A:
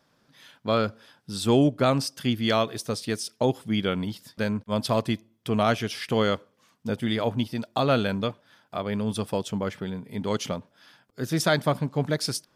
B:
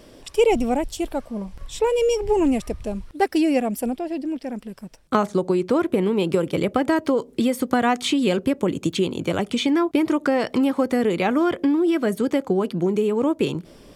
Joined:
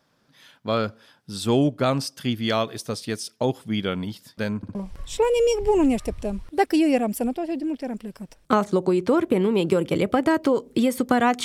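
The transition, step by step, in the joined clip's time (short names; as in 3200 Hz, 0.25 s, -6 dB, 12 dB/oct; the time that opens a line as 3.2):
A
4.57 stutter in place 0.06 s, 3 plays
4.75 switch to B from 1.37 s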